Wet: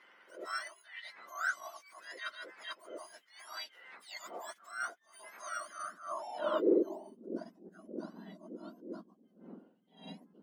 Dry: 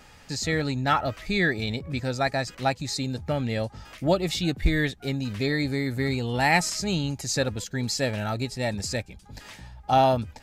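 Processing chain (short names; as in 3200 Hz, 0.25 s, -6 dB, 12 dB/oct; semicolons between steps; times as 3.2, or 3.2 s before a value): spectrum mirrored in octaves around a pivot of 1600 Hz; 0.67–1.31 compressor 12:1, threshold -35 dBFS, peak gain reduction 12.5 dB; band-pass sweep 2000 Hz -> 220 Hz, 5.69–7.05; attack slew limiter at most 130 dB/s; gain +2 dB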